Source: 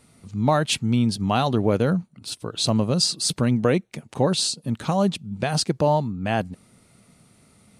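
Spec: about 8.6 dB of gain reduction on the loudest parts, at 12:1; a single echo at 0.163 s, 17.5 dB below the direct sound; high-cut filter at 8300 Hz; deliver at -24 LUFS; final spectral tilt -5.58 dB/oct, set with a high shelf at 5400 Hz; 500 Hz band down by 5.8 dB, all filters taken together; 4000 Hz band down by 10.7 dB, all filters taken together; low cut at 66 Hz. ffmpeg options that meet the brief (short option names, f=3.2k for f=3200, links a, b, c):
-af "highpass=66,lowpass=8.3k,equalizer=f=500:t=o:g=-7,equalizer=f=4k:t=o:g=-9,highshelf=f=5.4k:g=-8.5,acompressor=threshold=-26dB:ratio=12,aecho=1:1:163:0.133,volume=8.5dB"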